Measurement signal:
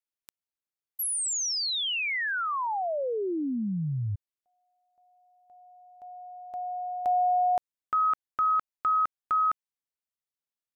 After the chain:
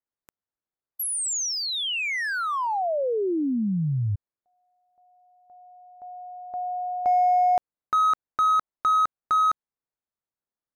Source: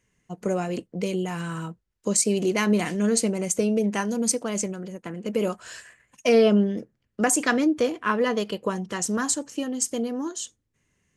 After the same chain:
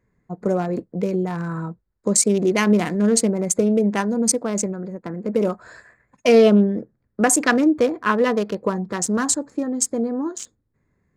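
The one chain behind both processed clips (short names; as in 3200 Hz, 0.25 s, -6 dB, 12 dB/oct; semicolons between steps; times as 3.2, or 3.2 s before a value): Wiener smoothing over 15 samples; gain +5 dB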